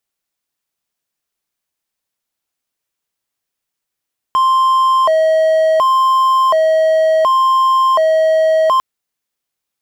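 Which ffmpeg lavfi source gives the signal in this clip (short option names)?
-f lavfi -i "aevalsrc='0.447*(1-4*abs(mod((843.5*t+206.5/0.69*(0.5-abs(mod(0.69*t,1)-0.5)))+0.25,1)-0.5))':d=4.45:s=44100"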